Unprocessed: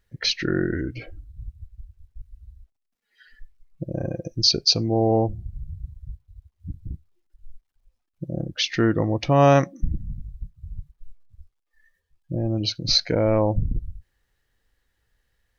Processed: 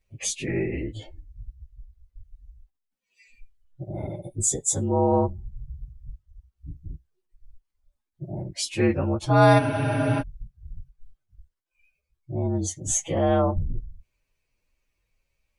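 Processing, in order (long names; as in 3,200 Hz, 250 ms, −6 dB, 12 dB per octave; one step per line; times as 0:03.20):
partials spread apart or drawn together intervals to 116%
frozen spectrum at 0:09.61, 0.59 s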